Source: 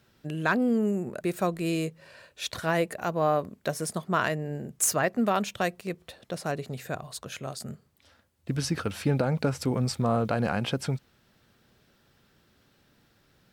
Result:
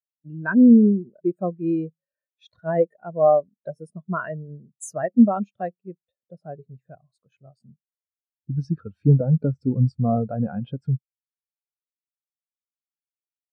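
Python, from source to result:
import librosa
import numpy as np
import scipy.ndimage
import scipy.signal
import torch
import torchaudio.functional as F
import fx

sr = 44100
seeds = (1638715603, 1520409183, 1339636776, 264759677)

y = fx.spectral_expand(x, sr, expansion=2.5)
y = F.gain(torch.from_numpy(y), 8.0).numpy()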